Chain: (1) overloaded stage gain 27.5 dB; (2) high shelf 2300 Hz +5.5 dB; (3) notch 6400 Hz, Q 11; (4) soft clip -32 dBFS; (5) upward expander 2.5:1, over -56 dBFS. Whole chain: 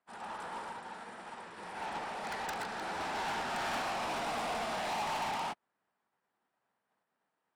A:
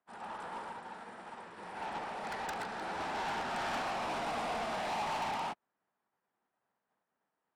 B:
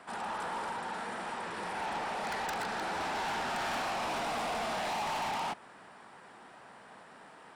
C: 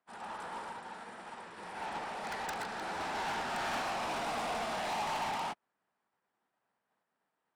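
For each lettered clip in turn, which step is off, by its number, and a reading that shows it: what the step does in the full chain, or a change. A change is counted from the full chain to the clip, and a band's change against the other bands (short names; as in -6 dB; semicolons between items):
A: 2, 8 kHz band -3.5 dB; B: 5, momentary loudness spread change +8 LU; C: 1, distortion -9 dB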